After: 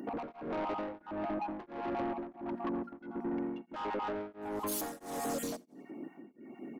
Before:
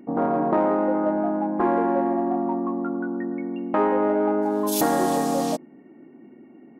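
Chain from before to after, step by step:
time-frequency cells dropped at random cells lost 27%
high-pass filter 150 Hz 6 dB per octave
high-shelf EQ 5,100 Hz +7.5 dB
mains-hum notches 60/120/180/240 Hz
in parallel at −2 dB: brickwall limiter −18 dBFS, peak gain reduction 10.5 dB
on the sum: downward compressor 4 to 1, threshold −29 dBFS, peak gain reduction 12.5 dB
soft clipping −31 dBFS, distortion −11 dB
repeating echo 86 ms, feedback 43%, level −18 dB
tremolo along a rectified sine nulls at 1.5 Hz

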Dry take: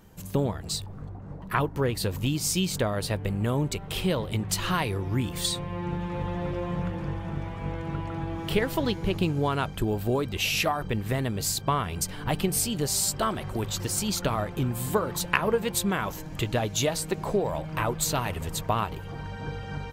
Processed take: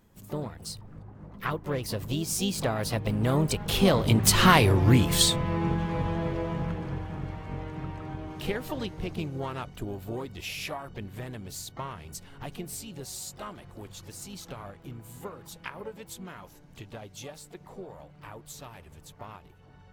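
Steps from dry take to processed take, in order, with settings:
source passing by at 0:04.64, 20 m/s, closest 13 metres
pitch-shifted copies added +4 semitones −10 dB, +12 semitones −17 dB
level +8.5 dB

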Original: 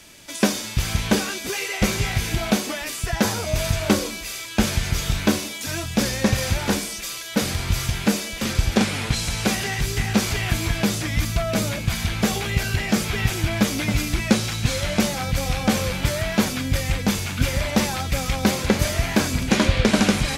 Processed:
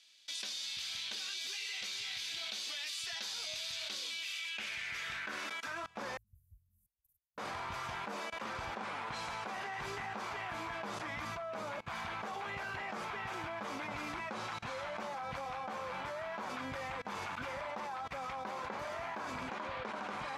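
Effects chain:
band-pass filter sweep 3,900 Hz → 1,000 Hz, 0:03.93–0:06.00
output level in coarse steps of 23 dB
0:06.17–0:07.38: inverse Chebyshev band-stop filter 420–3,700 Hz, stop band 80 dB
level +5 dB

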